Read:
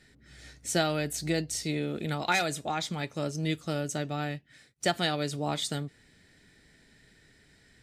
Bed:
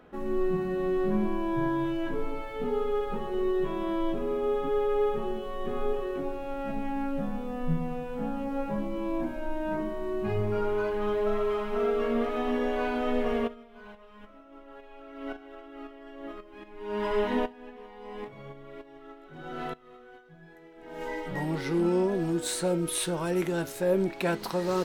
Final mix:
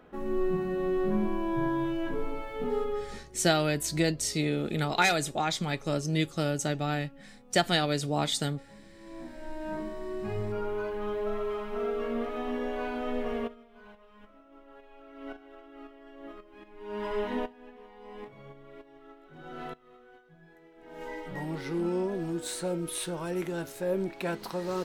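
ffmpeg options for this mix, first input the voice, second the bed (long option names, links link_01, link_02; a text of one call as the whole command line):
ffmpeg -i stem1.wav -i stem2.wav -filter_complex "[0:a]adelay=2700,volume=2.5dB[link_01];[1:a]volume=16dB,afade=type=out:start_time=2.79:duration=0.47:silence=0.0944061,afade=type=in:start_time=8.97:duration=0.76:silence=0.141254[link_02];[link_01][link_02]amix=inputs=2:normalize=0" out.wav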